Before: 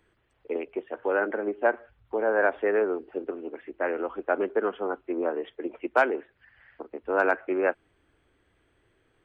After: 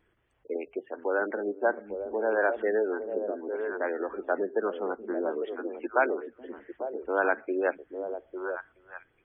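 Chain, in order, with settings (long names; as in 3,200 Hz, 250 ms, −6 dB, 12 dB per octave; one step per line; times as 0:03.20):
gate on every frequency bin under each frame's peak −25 dB strong
pitch vibrato 0.47 Hz 9.5 cents
echo through a band-pass that steps 425 ms, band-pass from 180 Hz, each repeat 1.4 octaves, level −3 dB
level −2.5 dB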